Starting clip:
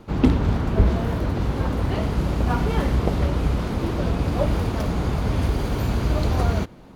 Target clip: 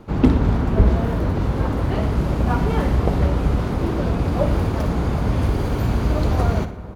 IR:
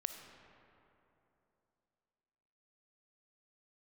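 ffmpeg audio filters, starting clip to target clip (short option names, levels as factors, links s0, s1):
-filter_complex "[0:a]aecho=1:1:60|120|180|240:0.224|0.0963|0.0414|0.0178,asplit=2[s0][s1];[1:a]atrim=start_sample=2205,asetrate=27783,aresample=44100,lowpass=2500[s2];[s1][s2]afir=irnorm=-1:irlink=0,volume=0.447[s3];[s0][s3]amix=inputs=2:normalize=0,volume=0.891"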